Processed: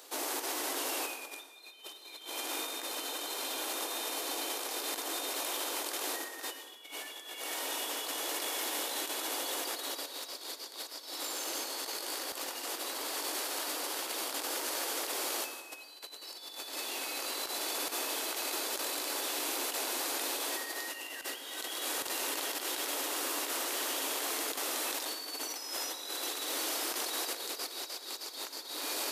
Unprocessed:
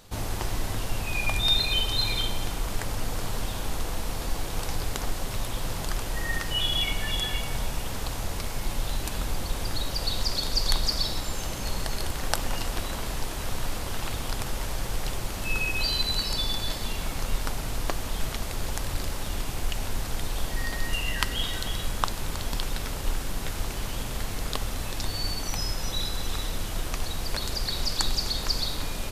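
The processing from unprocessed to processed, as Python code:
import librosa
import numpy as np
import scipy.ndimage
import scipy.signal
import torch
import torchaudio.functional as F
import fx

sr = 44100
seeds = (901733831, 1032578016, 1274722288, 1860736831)

y = scipy.signal.sosfilt(scipy.signal.butter(12, 280.0, 'highpass', fs=sr, output='sos'), x)
y = fx.echo_diffused(y, sr, ms=1304, feedback_pct=74, wet_db=-13)
y = fx.over_compress(y, sr, threshold_db=-37.0, ratio=-0.5)
y = fx.high_shelf(y, sr, hz=7000.0, db=7.0)
y = fx.rev_plate(y, sr, seeds[0], rt60_s=0.98, hf_ratio=0.8, predelay_ms=80, drr_db=7.5)
y = y * librosa.db_to_amplitude(-3.5)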